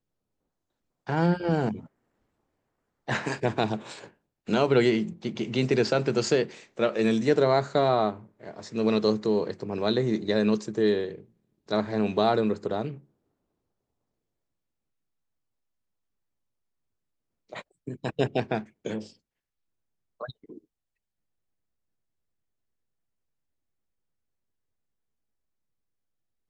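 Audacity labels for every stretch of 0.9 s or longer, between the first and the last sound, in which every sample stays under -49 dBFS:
1.860000	3.080000	silence
13.010000	17.490000	silence
19.130000	20.200000	silence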